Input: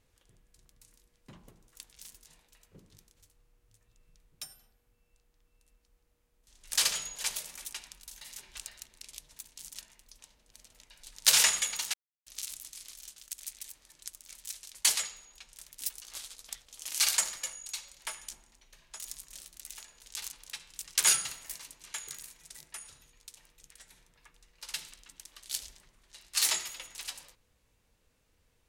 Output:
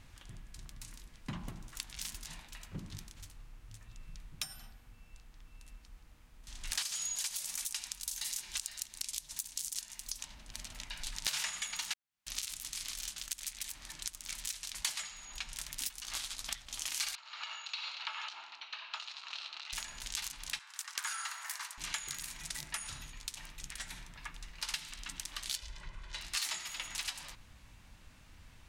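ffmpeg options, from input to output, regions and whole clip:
-filter_complex "[0:a]asettb=1/sr,asplit=3[s0][s1][s2];[s0]atrim=end=6.824[s3];[s1]atrim=start=6.82:end=10.23,asetpts=PTS-STARTPTS,afade=t=in:d=0.004:c=qsin,afade=t=out:st=3.406:d=0.004:c=qsin,bass=f=250:g=-3,treble=f=4000:g=14,acompressor=threshold=0.0447:ratio=3:attack=3.2:release=140:knee=1:detection=peak[s4];[s2]atrim=start=10.226[s5];[s3][s4]acrossfade=d=0.004:c1=hsin:c2=qsin[s6];[s6][s5]acrossfade=d=0.004:c1=qsin:c2=hsin,asettb=1/sr,asplit=3[s7][s8][s9];[s7]atrim=end=17.154[s10];[s8]atrim=start=17.15:end=19.73,asetpts=PTS-STARTPTS,afade=t=in:d=0.004:c=qsin,afade=t=out:st=2.576:d=0.004:c=qsin,acompressor=threshold=0.00447:ratio=5:attack=3.2:release=140:knee=1:detection=peak,asoftclip=type=hard:threshold=0.0106,highpass=f=470:w=0.5412,highpass=f=470:w=1.3066,equalizer=f=520:t=q:w=4:g=-9,equalizer=f=890:t=q:w=4:g=5,equalizer=f=1300:t=q:w=4:g=9,equalizer=f=1900:t=q:w=4:g=-3,equalizer=f=2700:t=q:w=4:g=8,equalizer=f=4100:t=q:w=4:g=8,lowpass=f=4500:w=0.5412,lowpass=f=4500:w=1.3066[s11];[s9]atrim=start=19.726[s12];[s10][s11]acrossfade=d=0.004:c1=hsin:c2=qsin[s13];[s13][s12]acrossfade=d=0.004:c1=qsin:c2=hsin,asettb=1/sr,asplit=3[s14][s15][s16];[s14]atrim=end=20.594[s17];[s15]atrim=start=20.59:end=21.78,asetpts=PTS-STARTPTS,afade=t=in:d=0.004:c=qsin,afade=t=out:st=1.186:d=0.004:c=qsin,highpass=f=870:w=0.5412,highpass=f=870:w=1.3066,acompressor=threshold=0.0316:ratio=2.5:attack=3.2:release=140:knee=1:detection=peak,highshelf=f=2000:t=q:w=1.5:g=-6.5[s18];[s16]atrim=start=21.776[s19];[s17][s18]acrossfade=d=0.004:c1=hsin:c2=qsin[s20];[s20][s19]acrossfade=d=0.004:c1=qsin:c2=hsin,asettb=1/sr,asplit=3[s21][s22][s23];[s21]atrim=end=25.564[s24];[s22]atrim=start=25.56:end=26.21,asetpts=PTS-STARTPTS,afade=t=in:d=0.004:c=qsin,afade=t=out:st=0.646:d=0.004:c=qsin,aemphasis=mode=reproduction:type=50fm,aecho=1:1:2:0.57,atrim=end_sample=28665[s25];[s23]atrim=start=26.206[s26];[s24][s25]acrossfade=d=0.004:c1=hsin:c2=qsin[s27];[s27][s26]acrossfade=d=0.004:c1=qsin:c2=hsin,lowpass=f=3900:p=1,equalizer=f=460:w=2.1:g=-15,acompressor=threshold=0.00251:ratio=6,volume=6.31"

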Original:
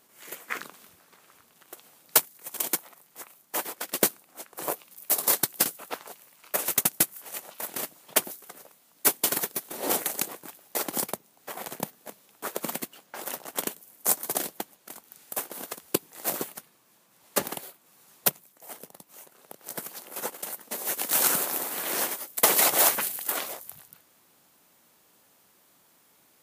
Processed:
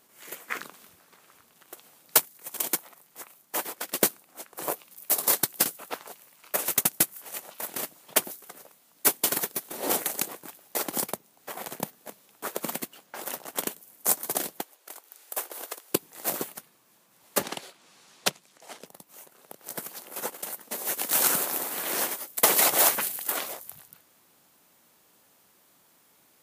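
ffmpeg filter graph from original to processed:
-filter_complex "[0:a]asettb=1/sr,asplit=3[s0][s1][s2];[s0]atrim=end=14.614[s3];[s1]atrim=start=14.61:end=15.91,asetpts=PTS-STARTPTS,afade=t=in:d=0.004:c=qsin,afade=t=out:st=1.296:d=0.004:c=qsin,highpass=f=360:w=0.5412,highpass=f=360:w=1.3066,volume=10,asoftclip=hard,volume=0.1[s4];[s2]atrim=start=15.906[s5];[s3][s4]acrossfade=d=0.004:c1=hsin:c2=qsin[s6];[s6][s5]acrossfade=d=0.004:c1=qsin:c2=hsin,asettb=1/sr,asplit=3[s7][s8][s9];[s7]atrim=end=17.434[s10];[s8]atrim=start=17.43:end=18.86,asetpts=PTS-STARTPTS,afade=t=in:d=0.004:c=qsin,afade=t=out:st=1.426:d=0.004:c=qsin,highpass=120,lowpass=4600,highshelf=f=3100:g=11,acompressor=mode=upward:threshold=0.00316:ratio=2.5:attack=3.2:release=140:knee=2.83:detection=peak[s11];[s9]atrim=start=18.856[s12];[s10][s11]acrossfade=d=0.004:c1=hsin:c2=qsin[s13];[s13][s12]acrossfade=d=0.004:c1=qsin:c2=hsin"

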